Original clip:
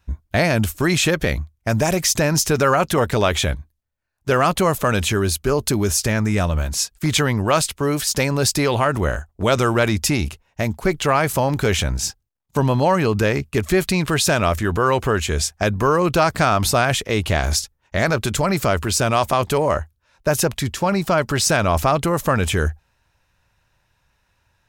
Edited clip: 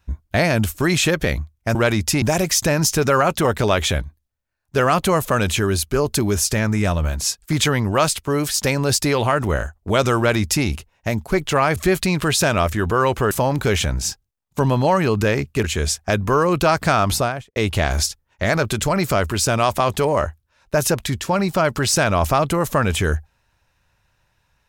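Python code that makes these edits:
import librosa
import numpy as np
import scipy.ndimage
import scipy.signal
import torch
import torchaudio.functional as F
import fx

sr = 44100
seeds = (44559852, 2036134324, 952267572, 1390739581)

y = fx.studio_fade_out(x, sr, start_s=16.62, length_s=0.47)
y = fx.edit(y, sr, fx.duplicate(start_s=9.71, length_s=0.47, to_s=1.75),
    fx.move(start_s=13.62, length_s=1.55, to_s=11.29), tone=tone)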